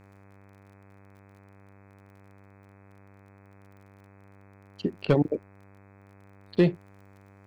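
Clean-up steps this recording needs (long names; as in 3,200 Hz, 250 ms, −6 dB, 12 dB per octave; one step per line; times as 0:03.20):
clipped peaks rebuilt −12 dBFS
click removal
hum removal 98.5 Hz, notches 26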